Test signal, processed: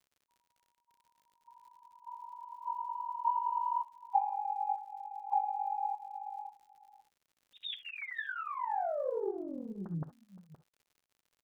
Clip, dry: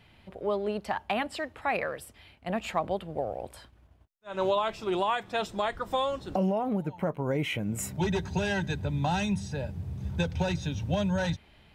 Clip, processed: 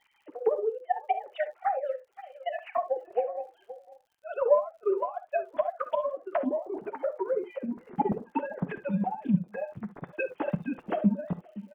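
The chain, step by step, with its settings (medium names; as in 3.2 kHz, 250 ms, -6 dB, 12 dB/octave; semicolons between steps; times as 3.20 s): formants replaced by sine waves; low-pass that closes with the level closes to 610 Hz, closed at -26 dBFS; on a send: delay 519 ms -16 dB; on the sum: flange 1.5 Hz, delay 6.9 ms, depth 3.5 ms, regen -33%; transient shaper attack +6 dB, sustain -9 dB; distance through air 160 m; gated-style reverb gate 90 ms rising, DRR 12 dB; crackle 89 per s -60 dBFS; trim +3.5 dB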